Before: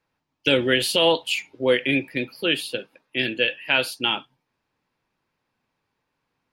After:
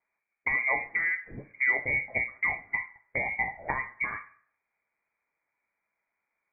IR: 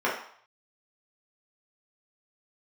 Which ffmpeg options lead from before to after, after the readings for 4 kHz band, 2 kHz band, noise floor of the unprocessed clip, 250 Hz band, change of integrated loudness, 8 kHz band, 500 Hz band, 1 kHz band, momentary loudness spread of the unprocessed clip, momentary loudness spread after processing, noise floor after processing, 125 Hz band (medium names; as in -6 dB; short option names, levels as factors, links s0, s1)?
under -40 dB, -1.5 dB, -78 dBFS, -20.5 dB, -6.5 dB, under -40 dB, -18.5 dB, -5.0 dB, 10 LU, 8 LU, -85 dBFS, -10.5 dB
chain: -filter_complex "[0:a]agate=range=0.316:threshold=0.00891:ratio=16:detection=peak,equalizer=f=970:w=3.6:g=-9,acompressor=threshold=0.0316:ratio=6,asplit=2[s0][s1];[1:a]atrim=start_sample=2205[s2];[s1][s2]afir=irnorm=-1:irlink=0,volume=0.0708[s3];[s0][s3]amix=inputs=2:normalize=0,lowpass=f=2100:t=q:w=0.5098,lowpass=f=2100:t=q:w=0.6013,lowpass=f=2100:t=q:w=0.9,lowpass=f=2100:t=q:w=2.563,afreqshift=-2500,volume=1.78"